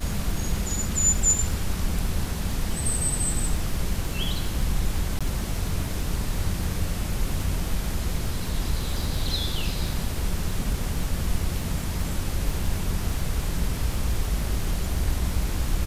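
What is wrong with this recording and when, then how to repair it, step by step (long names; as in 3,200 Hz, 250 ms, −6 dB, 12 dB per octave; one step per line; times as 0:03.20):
surface crackle 41 per second −31 dBFS
0:05.19–0:05.21: drop-out 16 ms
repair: click removal
repair the gap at 0:05.19, 16 ms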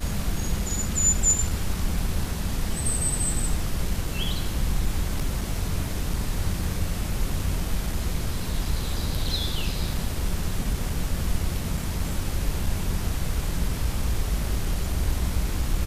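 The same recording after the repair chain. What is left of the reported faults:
none of them is left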